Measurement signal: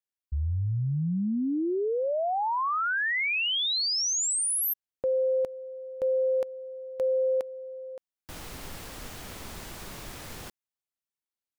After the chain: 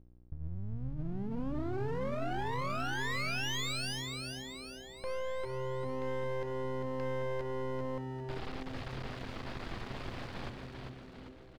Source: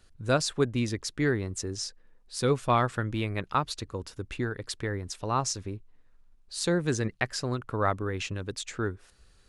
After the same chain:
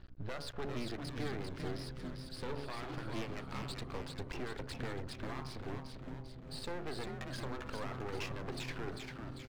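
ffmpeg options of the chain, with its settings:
ffmpeg -i in.wav -filter_complex "[0:a]acrossover=split=300|2100[link_01][link_02][link_03];[link_01]acompressor=threshold=-41dB:ratio=4[link_04];[link_02]acompressor=threshold=-32dB:ratio=4[link_05];[link_03]acompressor=threshold=-34dB:ratio=4[link_06];[link_04][link_05][link_06]amix=inputs=3:normalize=0,aemphasis=mode=reproduction:type=75fm,bandreject=frequency=70.91:width_type=h:width=4,bandreject=frequency=141.82:width_type=h:width=4,bandreject=frequency=212.73:width_type=h:width=4,bandreject=frequency=283.64:width_type=h:width=4,bandreject=frequency=354.55:width_type=h:width=4,bandreject=frequency=425.46:width_type=h:width=4,bandreject=frequency=496.37:width_type=h:width=4,bandreject=frequency=567.28:width_type=h:width=4,bandreject=frequency=638.19:width_type=h:width=4,bandreject=frequency=709.1:width_type=h:width=4,bandreject=frequency=780.01:width_type=h:width=4,bandreject=frequency=850.92:width_type=h:width=4,bandreject=frequency=921.83:width_type=h:width=4,bandreject=frequency=992.74:width_type=h:width=4,bandreject=frequency=1063.65:width_type=h:width=4,bandreject=frequency=1134.56:width_type=h:width=4,bandreject=frequency=1205.47:width_type=h:width=4,bandreject=frequency=1276.38:width_type=h:width=4,bandreject=frequency=1347.29:width_type=h:width=4,bandreject=frequency=1418.2:width_type=h:width=4,bandreject=frequency=1489.11:width_type=h:width=4,acompressor=threshold=-34dB:ratio=4:attack=0.28:release=215:knee=6:detection=peak,aresample=11025,volume=35.5dB,asoftclip=hard,volume=-35.5dB,aresample=44100,aeval=exprs='val(0)+0.00112*(sin(2*PI*60*n/s)+sin(2*PI*2*60*n/s)/2+sin(2*PI*3*60*n/s)/3+sin(2*PI*4*60*n/s)/4+sin(2*PI*5*60*n/s)/5)':channel_layout=same,aeval=exprs='max(val(0),0)':channel_layout=same,asplit=2[link_07][link_08];[link_08]asplit=7[link_09][link_10][link_11][link_12][link_13][link_14][link_15];[link_09]adelay=396,afreqshift=-130,volume=-4.5dB[link_16];[link_10]adelay=792,afreqshift=-260,volume=-9.7dB[link_17];[link_11]adelay=1188,afreqshift=-390,volume=-14.9dB[link_18];[link_12]adelay=1584,afreqshift=-520,volume=-20.1dB[link_19];[link_13]adelay=1980,afreqshift=-650,volume=-25.3dB[link_20];[link_14]adelay=2376,afreqshift=-780,volume=-30.5dB[link_21];[link_15]adelay=2772,afreqshift=-910,volume=-35.7dB[link_22];[link_16][link_17][link_18][link_19][link_20][link_21][link_22]amix=inputs=7:normalize=0[link_23];[link_07][link_23]amix=inputs=2:normalize=0,volume=4.5dB" out.wav

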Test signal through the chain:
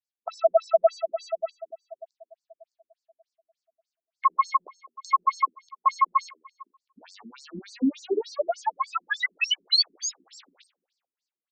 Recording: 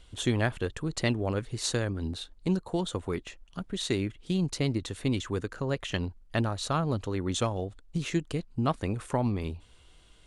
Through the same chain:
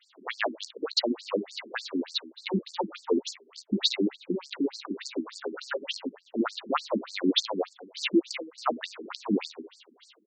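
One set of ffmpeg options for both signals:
ffmpeg -i in.wav -filter_complex "[0:a]asplit=2[link_01][link_02];[link_02]acrusher=bits=4:dc=4:mix=0:aa=0.000001,volume=-4dB[link_03];[link_01][link_03]amix=inputs=2:normalize=0,alimiter=limit=-15.5dB:level=0:latency=1:release=215,acrossover=split=400|5100[link_04][link_05][link_06];[link_06]acompressor=threshold=-51dB:ratio=6[link_07];[link_04][link_05][link_07]amix=inputs=3:normalize=0,bandreject=frequency=79.93:width_type=h:width=4,bandreject=frequency=159.86:width_type=h:width=4,bandreject=frequency=239.79:width_type=h:width=4,bandreject=frequency=319.72:width_type=h:width=4,bandreject=frequency=399.65:width_type=h:width=4,bandreject=frequency=479.58:width_type=h:width=4,bandreject=frequency=559.51:width_type=h:width=4,bandreject=frequency=639.44:width_type=h:width=4,dynaudnorm=framelen=140:gausssize=3:maxgain=9.5dB,equalizer=frequency=4500:width_type=o:width=0.93:gain=6,asplit=2[link_08][link_09];[link_09]adelay=15,volume=-12.5dB[link_10];[link_08][link_10]amix=inputs=2:normalize=0,aecho=1:1:208|416:0.106|0.0297,afftfilt=real='re*between(b*sr/1024,260*pow(6200/260,0.5+0.5*sin(2*PI*3.4*pts/sr))/1.41,260*pow(6200/260,0.5+0.5*sin(2*PI*3.4*pts/sr))*1.41)':imag='im*between(b*sr/1024,260*pow(6200/260,0.5+0.5*sin(2*PI*3.4*pts/sr))/1.41,260*pow(6200/260,0.5+0.5*sin(2*PI*3.4*pts/sr))*1.41)':win_size=1024:overlap=0.75" out.wav

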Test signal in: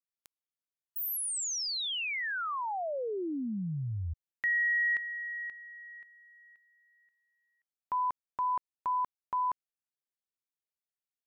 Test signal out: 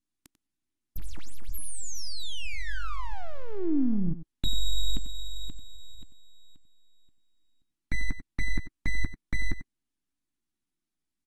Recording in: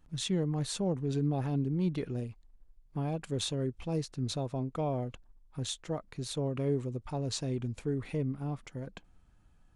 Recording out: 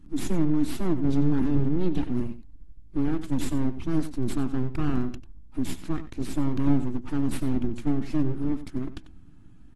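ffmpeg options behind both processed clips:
ffmpeg -i in.wav -filter_complex "[0:a]aeval=exprs='abs(val(0))':channel_layout=same,lowshelf=frequency=390:width_type=q:width=3:gain=9,asplit=2[link_01][link_02];[link_02]acompressor=threshold=-36dB:ratio=10:attack=1.3:release=64:knee=1:detection=rms,volume=-3dB[link_03];[link_01][link_03]amix=inputs=2:normalize=0,asplit=2[link_04][link_05];[link_05]adelay=93.29,volume=-13dB,highshelf=frequency=4000:gain=-2.1[link_06];[link_04][link_06]amix=inputs=2:normalize=0" -ar 48000 -c:a aac -b:a 32k out.aac

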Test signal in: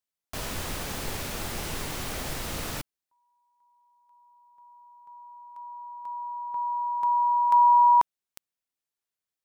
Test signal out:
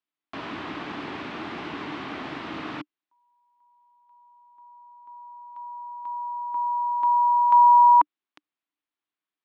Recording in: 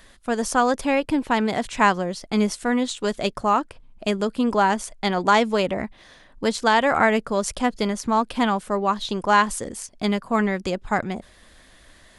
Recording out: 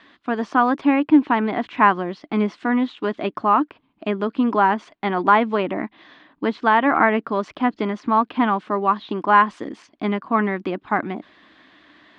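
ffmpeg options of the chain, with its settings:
ffmpeg -i in.wav -filter_complex "[0:a]highpass=200,equalizer=frequency=300:width_type=q:width=4:gain=10,equalizer=frequency=520:width_type=q:width=4:gain=-8,equalizer=frequency=1100:width_type=q:width=4:gain=4,lowpass=frequency=3500:width=0.5412,lowpass=frequency=3500:width=1.3066,crystalizer=i=1:c=0,acrossover=split=2600[link_01][link_02];[link_02]acompressor=threshold=-48dB:ratio=4:attack=1:release=60[link_03];[link_01][link_03]amix=inputs=2:normalize=0,volume=1.5dB" out.wav

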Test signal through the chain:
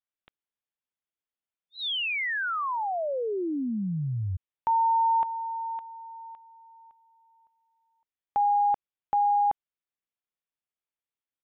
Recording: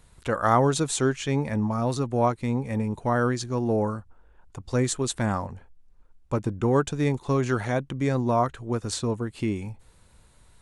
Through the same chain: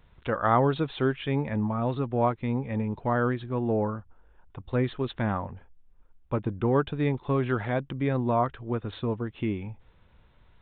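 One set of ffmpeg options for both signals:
ffmpeg -i in.wav -af "aresample=8000,aresample=44100,volume=-2dB" out.wav

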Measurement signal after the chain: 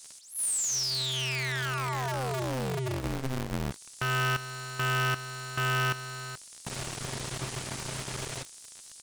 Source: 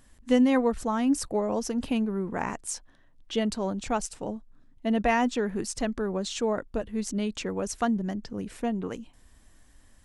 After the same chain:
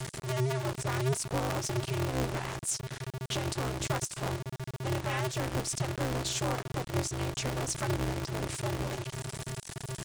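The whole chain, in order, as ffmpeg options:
ffmpeg -i in.wav -filter_complex "[0:a]aeval=exprs='val(0)+0.5*0.0141*sgn(val(0))':channel_layout=same,bandreject=frequency=50:width_type=h:width=6,bandreject=frequency=100:width_type=h:width=6,bandreject=frequency=150:width_type=h:width=6,bandreject=frequency=200:width_type=h:width=6,asplit=2[link_01][link_02];[link_02]acompressor=threshold=-39dB:ratio=6,volume=-1.5dB[link_03];[link_01][link_03]amix=inputs=2:normalize=0,alimiter=limit=-20dB:level=0:latency=1:release=216,acrossover=split=4500[link_04][link_05];[link_04]acrusher=bits=4:dc=4:mix=0:aa=0.000001[link_06];[link_06][link_05]amix=inputs=2:normalize=0,aresample=22050,aresample=44100,aeval=exprs='val(0)*sgn(sin(2*PI*130*n/s))':channel_layout=same" out.wav

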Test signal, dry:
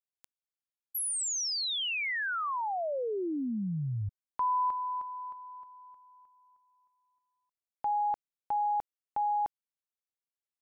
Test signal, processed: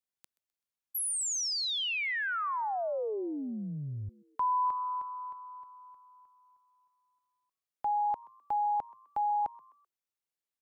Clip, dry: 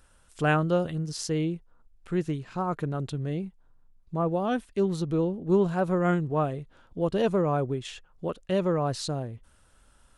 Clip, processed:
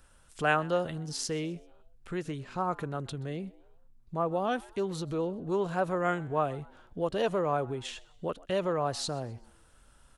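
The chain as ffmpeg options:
ffmpeg -i in.wav -filter_complex "[0:a]acrossover=split=460|1000[link_01][link_02][link_03];[link_01]acompressor=threshold=-36dB:ratio=6:attack=8.8:release=63:knee=6[link_04];[link_04][link_02][link_03]amix=inputs=3:normalize=0,asplit=4[link_05][link_06][link_07][link_08];[link_06]adelay=128,afreqshift=110,volume=-23dB[link_09];[link_07]adelay=256,afreqshift=220,volume=-30.7dB[link_10];[link_08]adelay=384,afreqshift=330,volume=-38.5dB[link_11];[link_05][link_09][link_10][link_11]amix=inputs=4:normalize=0" out.wav

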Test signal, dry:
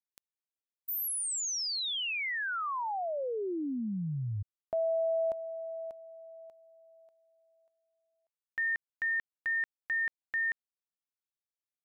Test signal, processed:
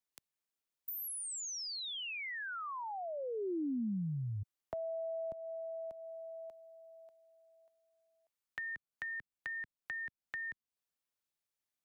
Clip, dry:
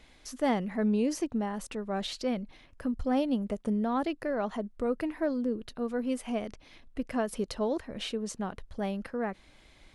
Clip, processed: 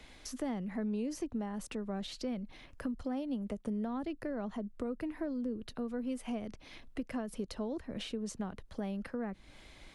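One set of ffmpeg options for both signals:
ffmpeg -i in.wav -filter_complex "[0:a]acrossover=split=120|290[link_01][link_02][link_03];[link_01]acompressor=threshold=-53dB:ratio=4[link_04];[link_02]acompressor=threshold=-43dB:ratio=4[link_05];[link_03]acompressor=threshold=-46dB:ratio=4[link_06];[link_04][link_05][link_06]amix=inputs=3:normalize=0,volume=3dB" out.wav

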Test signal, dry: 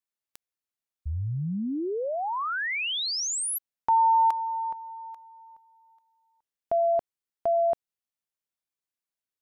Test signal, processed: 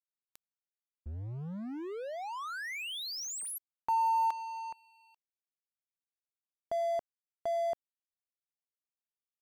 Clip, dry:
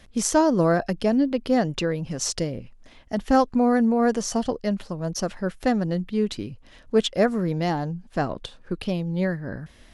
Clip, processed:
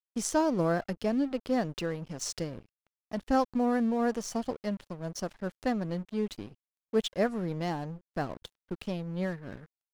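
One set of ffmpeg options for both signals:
ffmpeg -i in.wav -af "aeval=exprs='sgn(val(0))*max(abs(val(0))-0.0112,0)':channel_layout=same,volume=-7dB" out.wav

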